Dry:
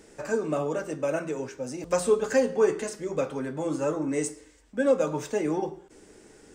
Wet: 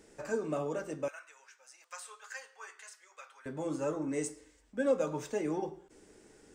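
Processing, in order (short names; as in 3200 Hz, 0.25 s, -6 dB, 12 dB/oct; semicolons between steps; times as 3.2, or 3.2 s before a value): 1.08–3.46 ladder high-pass 1000 Hz, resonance 25%; gain -6.5 dB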